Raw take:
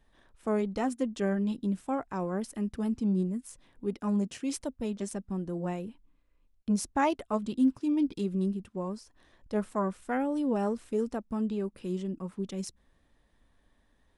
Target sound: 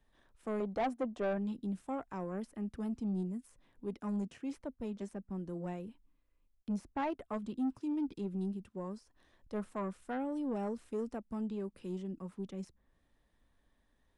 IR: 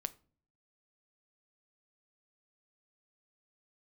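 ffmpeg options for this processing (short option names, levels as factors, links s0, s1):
-filter_complex "[0:a]asettb=1/sr,asplit=3[s0][s1][s2];[s0]atrim=end=0.604[s3];[s1]atrim=start=0.6:end=1.38,asetpts=PTS-STARTPTS,afade=t=in:d=0.004:c=qsin,afade=t=out:st=0.776:d=0.004:c=qsin,equalizer=f=700:w=1.4:g=13.5[s4];[s2]atrim=start=1.376[s5];[s3][s4]acrossfade=d=0.004:c1=hsin:c2=qsin[s6];[s6][s5]acrossfade=d=0.004:c1=qsin:c2=hsin,acrossover=split=130|2400[s7][s8][s9];[s9]acompressor=threshold=0.00141:ratio=6[s10];[s7][s8][s10]amix=inputs=3:normalize=0,asoftclip=type=tanh:threshold=0.075,volume=0.501"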